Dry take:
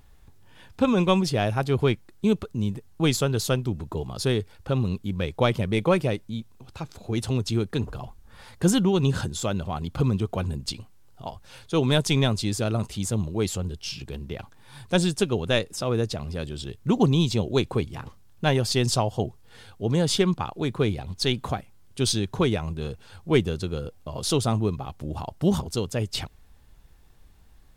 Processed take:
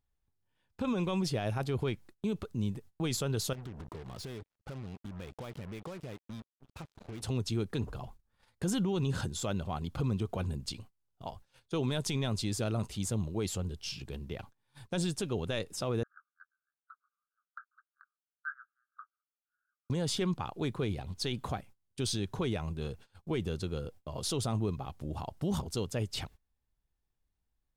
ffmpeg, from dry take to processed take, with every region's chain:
-filter_complex "[0:a]asettb=1/sr,asplit=3[s0][s1][s2];[s0]atrim=end=3.534[s3];[s1]atrim=start=3.53:end=7.22,asetpts=PTS-STARTPTS,afade=t=in:d=0.004:c=qsin,afade=t=out:st=3.686:d=0.004:c=qsin,lowpass=f=3600:p=1,acompressor=threshold=0.0224:ratio=10:attack=3.2:release=140:knee=1:detection=peak,acrusher=bits=6:mix=0:aa=0.5[s4];[s2]atrim=start=7.216[s5];[s3][s4]acrossfade=d=0.004:c1=hsin:c2=qsin[s6];[s6][s5]acrossfade=d=0.004:c1=qsin:c2=hsin,asettb=1/sr,asplit=3[s7][s8][s9];[s7]atrim=end=16.034[s10];[s8]atrim=start=16.03:end=19.9,asetpts=PTS-STARTPTS,afade=t=in:d=0.004:c=qsin,afade=t=out:st=3.866:d=0.004:c=qsin,asuperpass=centerf=1400:order=12:qfactor=3.2,asplit=2[s11][s12];[s12]adelay=22,volume=0.447[s13];[s11][s13]amix=inputs=2:normalize=0,atrim=end_sample=170667[s14];[s9]atrim=start=19.896[s15];[s10][s14]acrossfade=d=0.004:c1=hsin:c2=qsin[s16];[s16][s15]acrossfade=d=0.004:c1=qsin:c2=hsin,agate=range=0.0794:threshold=0.00708:ratio=16:detection=peak,alimiter=limit=0.126:level=0:latency=1:release=30,volume=0.501"

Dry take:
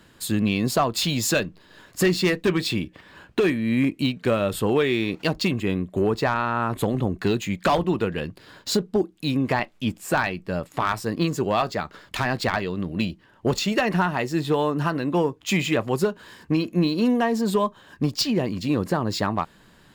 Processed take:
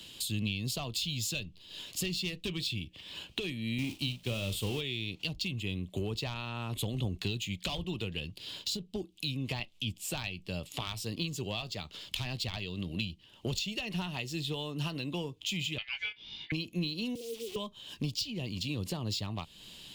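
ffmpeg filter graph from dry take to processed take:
-filter_complex "[0:a]asettb=1/sr,asplit=3[s0][s1][s2];[s0]atrim=end=3.784[s3];[s1]atrim=start=3.78:end=4.81,asetpts=PTS-STARTPTS,afade=t=in:d=0.004:c=qsin,afade=t=out:st=1.026:d=0.004:c=qsin,aeval=exprs='val(0)+0.5*0.0447*sgn(val(0))':c=same,agate=range=0.0224:threshold=0.0794:ratio=3:release=100:detection=peak,asplit=2[s4][s5];[s5]adelay=41,volume=0.266[s6];[s4][s6]amix=inputs=2:normalize=0,atrim=end_sample=45423[s7];[s2]atrim=start=4.806[s8];[s3][s7]acrossfade=d=0.004:c1=hsin:c2=qsin[s9];[s9][s8]acrossfade=d=0.004:c1=qsin:c2=hsin,asettb=1/sr,asplit=3[s10][s11][s12];[s10]atrim=end=15.784[s13];[s11]atrim=start=15.78:end=16.52,asetpts=PTS-STARTPTS,afade=t=in:d=0.004:c=qsin,afade=t=out:st=0.736:d=0.004:c=qsin,lowpass=f=2800:w=0.5412,lowpass=f=2800:w=1.3066,aeval=exprs='val(0)*sin(2*PI*1900*n/s)':c=same,asplit=2[s14][s15];[s15]adelay=19,volume=0.631[s16];[s14][s16]amix=inputs=2:normalize=0,atrim=end_sample=32634[s17];[s12]atrim=start=16.516[s18];[s13][s17]acrossfade=d=0.004:c1=hsin:c2=qsin[s19];[s19][s18]acrossfade=d=0.004:c1=qsin:c2=hsin,asettb=1/sr,asplit=3[s20][s21][s22];[s20]atrim=end=17.154[s23];[s21]atrim=start=17.15:end=17.56,asetpts=PTS-STARTPTS,afade=t=in:d=0.004:c=qsin,afade=t=out:st=0.406:d=0.004:c=qsin,asuperpass=centerf=370:order=8:qfactor=1.7,acrusher=bits=8:dc=4:mix=0:aa=0.000001[s24];[s22]atrim=start=17.556[s25];[s23][s24]acrossfade=d=0.004:c1=hsin:c2=qsin[s26];[s26][s25]acrossfade=d=0.004:c1=qsin:c2=hsin,highshelf=f=2200:t=q:w=3:g=11,acrossover=split=130[s27][s28];[s28]acompressor=threshold=0.02:ratio=4[s29];[s27][s29]amix=inputs=2:normalize=0,volume=0.668"

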